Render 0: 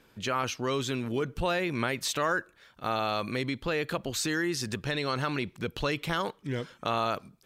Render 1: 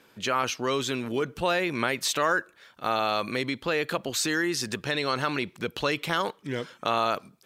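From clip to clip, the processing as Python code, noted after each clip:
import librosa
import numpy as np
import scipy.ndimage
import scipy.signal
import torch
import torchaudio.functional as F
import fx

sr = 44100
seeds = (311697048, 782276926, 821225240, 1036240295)

y = fx.highpass(x, sr, hz=250.0, slope=6)
y = y * 10.0 ** (4.0 / 20.0)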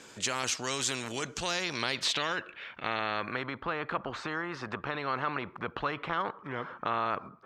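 y = fx.filter_sweep_lowpass(x, sr, from_hz=7300.0, to_hz=1200.0, start_s=1.24, end_s=3.59, q=4.5)
y = fx.spectral_comp(y, sr, ratio=2.0)
y = y * 10.0 ** (-7.5 / 20.0)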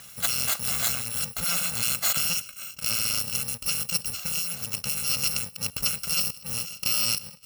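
y = fx.bit_reversed(x, sr, seeds[0], block=128)
y = y * 10.0 ** (6.0 / 20.0)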